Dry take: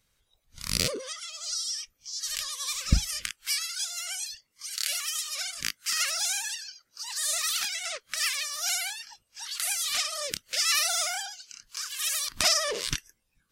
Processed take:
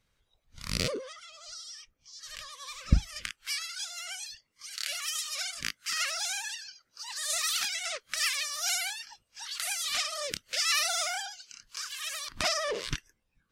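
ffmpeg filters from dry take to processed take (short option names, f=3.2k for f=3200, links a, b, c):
-af "asetnsamples=n=441:p=0,asendcmd='0.99 lowpass f 1300;3.16 lowpass f 3300;5.02 lowpass f 7700;5.59 lowpass f 3900;7.3 lowpass f 9100;9.06 lowpass f 5200;11.99 lowpass f 2300',lowpass=f=3.1k:p=1"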